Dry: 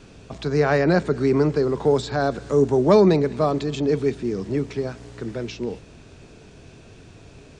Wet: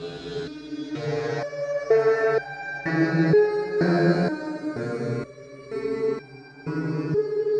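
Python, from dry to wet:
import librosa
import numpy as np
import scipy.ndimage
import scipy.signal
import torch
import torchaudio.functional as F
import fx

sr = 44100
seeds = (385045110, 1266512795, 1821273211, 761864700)

y = fx.noise_reduce_blind(x, sr, reduce_db=6)
y = fx.paulstretch(y, sr, seeds[0], factor=6.2, window_s=0.5, from_s=0.33)
y = fx.resonator_held(y, sr, hz=2.1, low_hz=86.0, high_hz=790.0)
y = y * librosa.db_to_amplitude(7.5)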